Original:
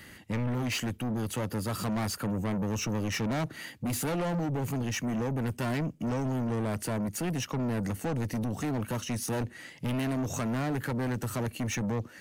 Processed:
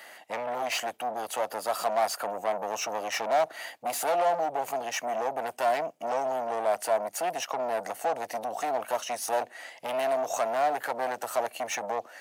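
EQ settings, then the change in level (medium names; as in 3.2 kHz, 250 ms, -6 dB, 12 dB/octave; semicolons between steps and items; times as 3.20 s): resonant high-pass 690 Hz, resonance Q 4.9; +1.5 dB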